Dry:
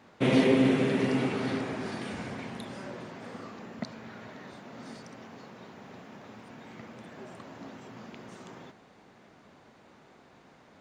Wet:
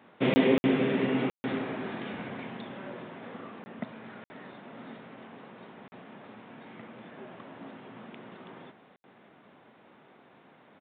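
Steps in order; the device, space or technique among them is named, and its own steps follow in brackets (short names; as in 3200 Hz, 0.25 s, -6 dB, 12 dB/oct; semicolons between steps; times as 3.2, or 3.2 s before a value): call with lost packets (HPF 140 Hz 12 dB/oct; downsampling 8000 Hz; packet loss packets of 20 ms bursts)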